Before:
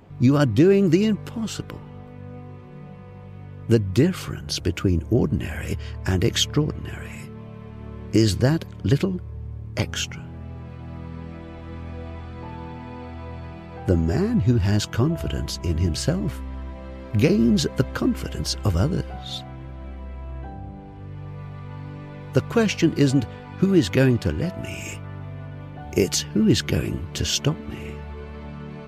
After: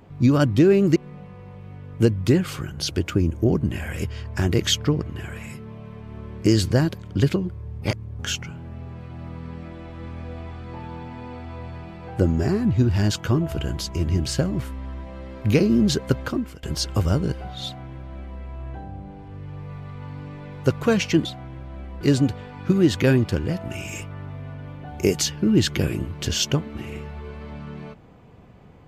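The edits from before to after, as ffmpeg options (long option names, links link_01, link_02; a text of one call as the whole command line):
ffmpeg -i in.wav -filter_complex "[0:a]asplit=7[link_01][link_02][link_03][link_04][link_05][link_06][link_07];[link_01]atrim=end=0.962[link_08];[link_02]atrim=start=2.648:end=9.512[link_09];[link_03]atrim=start=9.508:end=9.882,asetpts=PTS-STARTPTS,areverse[link_10];[link_04]atrim=start=9.878:end=18.32,asetpts=PTS-STARTPTS,afade=type=out:start_time=8.022:duration=0.42:silence=0.0891251[link_11];[link_05]atrim=start=18.32:end=22.942,asetpts=PTS-STARTPTS,afade=type=in:duration=0.004:curve=hsin:silence=0.0891251[link_12];[link_06]atrim=start=19.328:end=20.092[link_13];[link_07]atrim=start=22.938[link_14];[link_08][link_09]acrossfade=duration=0.004:curve1=hsin:curve2=hsin[link_15];[link_15][link_10]acrossfade=duration=0.004:curve1=hsin:curve2=hsin[link_16];[link_11][link_12]concat=n=2:v=0:a=1[link_17];[link_16][link_17]acrossfade=duration=0.004:curve1=hsin:curve2=hsin[link_18];[link_18][link_13]acrossfade=duration=0.004:curve1=hsin:curve2=hsin[link_19];[link_19][link_14]acrossfade=duration=0.004:curve1=hsin:curve2=hsin" out.wav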